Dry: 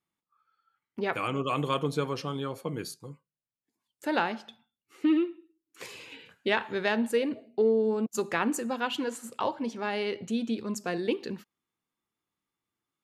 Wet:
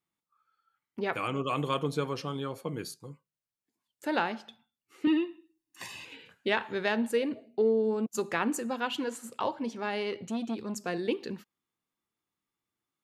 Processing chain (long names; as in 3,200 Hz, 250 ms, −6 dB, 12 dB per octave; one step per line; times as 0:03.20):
0:05.07–0:06.05: comb filter 1.1 ms, depth 100%
0:10.00–0:10.80: saturating transformer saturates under 440 Hz
level −1.5 dB